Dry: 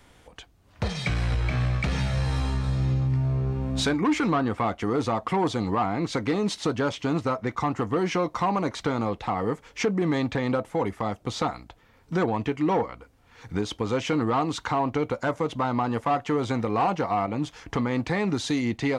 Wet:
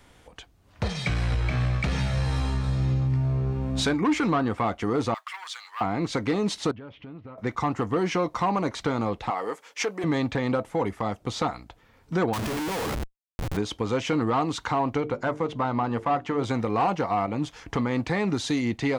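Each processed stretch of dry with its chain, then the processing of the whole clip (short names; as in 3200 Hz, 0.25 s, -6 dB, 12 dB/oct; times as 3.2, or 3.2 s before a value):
5.14–5.81 HPF 1400 Hz 24 dB/oct + modulation noise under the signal 30 dB
6.71–7.38 bell 1100 Hz -7.5 dB 2.9 oct + compressor 4:1, threshold -41 dBFS + LPF 2900 Hz 24 dB/oct
9.3–10.04 HPF 470 Hz + gate -59 dBFS, range -7 dB + high shelf 5900 Hz +6.5 dB
12.33–13.57 de-hum 72.62 Hz, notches 12 + Schmitt trigger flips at -42 dBFS
15–16.44 LPF 3500 Hz 6 dB/oct + notches 50/100/150/200/250/300/350/400/450 Hz
whole clip: dry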